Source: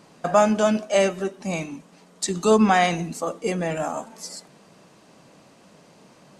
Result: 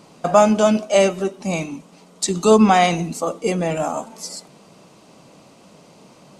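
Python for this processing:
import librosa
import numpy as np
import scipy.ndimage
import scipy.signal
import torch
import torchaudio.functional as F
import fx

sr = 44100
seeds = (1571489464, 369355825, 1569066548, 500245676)

y = fx.peak_eq(x, sr, hz=1700.0, db=-8.5, octaves=0.33)
y = y * librosa.db_to_amplitude(4.5)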